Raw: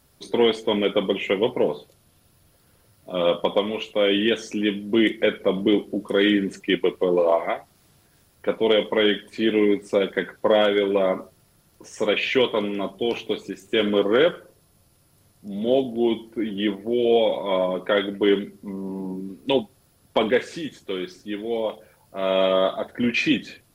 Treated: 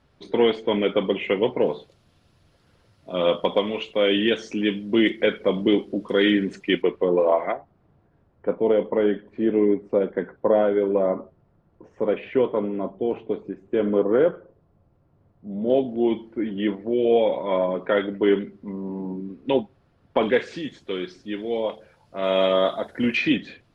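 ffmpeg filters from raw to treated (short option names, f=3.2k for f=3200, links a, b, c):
-af "asetnsamples=n=441:p=0,asendcmd='1.62 lowpass f 4900;6.82 lowpass f 2200;7.52 lowpass f 1000;15.7 lowpass f 2200;20.23 lowpass f 4700;22.24 lowpass f 8400;23.17 lowpass f 3400',lowpass=3k"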